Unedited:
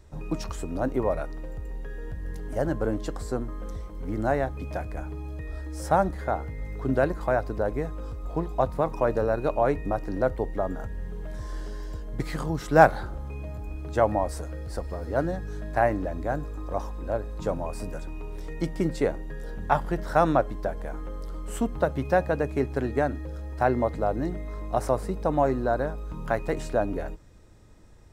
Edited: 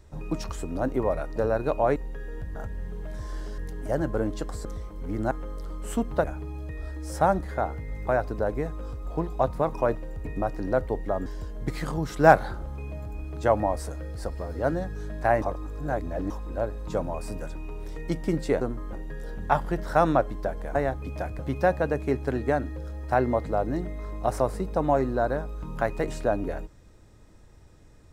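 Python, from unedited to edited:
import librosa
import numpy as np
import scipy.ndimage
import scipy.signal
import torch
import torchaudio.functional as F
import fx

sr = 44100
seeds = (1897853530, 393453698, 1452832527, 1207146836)

y = fx.edit(x, sr, fx.swap(start_s=1.36, length_s=0.3, other_s=9.14, other_length_s=0.6),
    fx.move(start_s=3.32, length_s=0.32, to_s=19.13),
    fx.swap(start_s=4.3, length_s=0.64, other_s=20.95, other_length_s=0.93),
    fx.cut(start_s=6.77, length_s=0.49),
    fx.move(start_s=10.75, length_s=1.03, to_s=2.25),
    fx.reverse_span(start_s=15.94, length_s=0.88), tone=tone)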